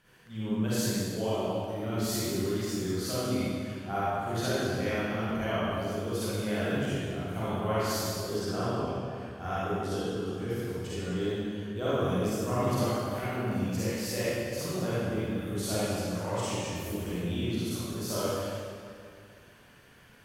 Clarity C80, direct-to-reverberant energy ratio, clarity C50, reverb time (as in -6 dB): -4.0 dB, -11.0 dB, -7.5 dB, 2.2 s